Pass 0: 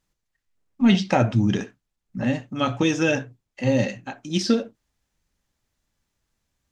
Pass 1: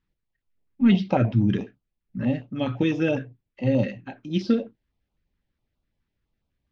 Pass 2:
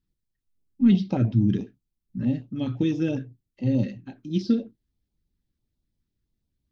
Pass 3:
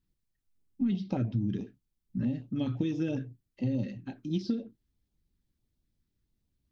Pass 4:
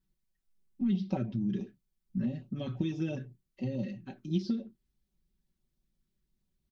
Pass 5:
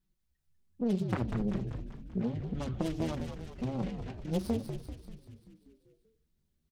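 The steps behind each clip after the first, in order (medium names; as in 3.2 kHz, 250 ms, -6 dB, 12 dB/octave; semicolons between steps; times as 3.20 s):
distance through air 300 m; step-sequenced notch 12 Hz 650–1800 Hz
high-order bell 1.2 kHz -10 dB 2.9 oct
compression 6:1, threshold -27 dBFS, peak gain reduction 13 dB
comb 5.3 ms, depth 71%; trim -3 dB
self-modulated delay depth 0.98 ms; frequency-shifting echo 194 ms, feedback 59%, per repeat -84 Hz, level -6.5 dB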